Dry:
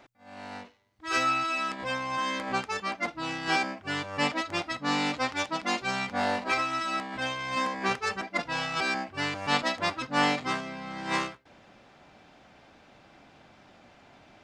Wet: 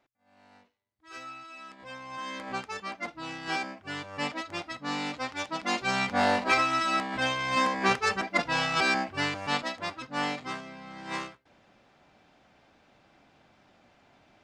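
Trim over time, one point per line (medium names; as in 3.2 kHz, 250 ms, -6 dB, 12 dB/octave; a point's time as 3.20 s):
1.48 s -17 dB
2.45 s -5 dB
5.32 s -5 dB
6.02 s +3.5 dB
9.09 s +3.5 dB
9.74 s -6 dB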